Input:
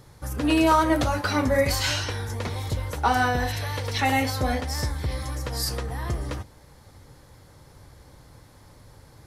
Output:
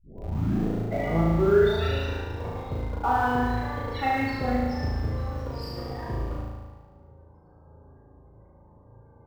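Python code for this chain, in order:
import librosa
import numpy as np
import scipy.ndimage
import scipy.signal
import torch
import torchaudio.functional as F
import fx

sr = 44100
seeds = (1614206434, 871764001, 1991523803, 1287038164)

p1 = fx.tape_start_head(x, sr, length_s=2.08)
p2 = fx.highpass(p1, sr, hz=65.0, slope=6)
p3 = fx.high_shelf(p2, sr, hz=2700.0, db=-4.5)
p4 = fx.rev_fdn(p3, sr, rt60_s=0.85, lf_ratio=1.0, hf_ratio=0.6, size_ms=15.0, drr_db=11.5)
p5 = fx.spec_topn(p4, sr, count=32)
p6 = fx.schmitt(p5, sr, flips_db=-27.5)
p7 = p5 + (p6 * librosa.db_to_amplitude(-9.0))
p8 = fx.peak_eq(p7, sr, hz=10000.0, db=-7.5, octaves=1.7)
p9 = fx.room_flutter(p8, sr, wall_m=6.3, rt60_s=1.4)
y = p9 * librosa.db_to_amplitude(-5.5)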